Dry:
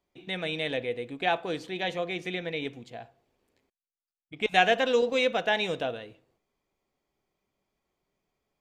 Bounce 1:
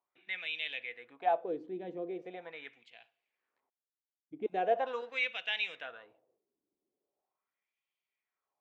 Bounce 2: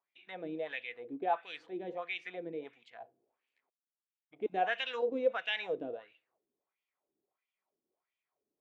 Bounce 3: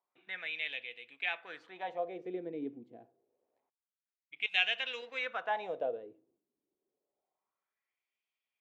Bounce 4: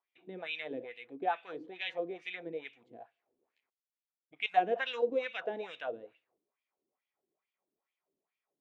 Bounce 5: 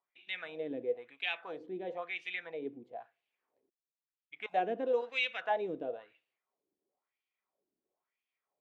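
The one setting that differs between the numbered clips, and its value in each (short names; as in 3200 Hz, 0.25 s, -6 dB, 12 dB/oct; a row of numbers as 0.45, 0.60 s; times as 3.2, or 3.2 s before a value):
wah, rate: 0.41, 1.5, 0.27, 2.3, 1 Hz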